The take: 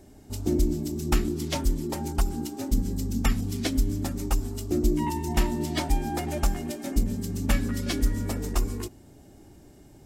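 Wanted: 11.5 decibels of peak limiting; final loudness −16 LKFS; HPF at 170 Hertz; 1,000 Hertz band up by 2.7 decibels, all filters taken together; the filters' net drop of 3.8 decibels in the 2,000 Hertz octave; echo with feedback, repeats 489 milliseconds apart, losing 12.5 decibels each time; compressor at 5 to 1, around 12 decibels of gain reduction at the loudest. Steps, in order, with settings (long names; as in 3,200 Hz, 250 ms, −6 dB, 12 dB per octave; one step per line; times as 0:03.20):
high-pass filter 170 Hz
parametric band 1,000 Hz +4.5 dB
parametric band 2,000 Hz −6 dB
downward compressor 5 to 1, threshold −36 dBFS
brickwall limiter −32 dBFS
repeating echo 489 ms, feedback 24%, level −12.5 dB
level +25 dB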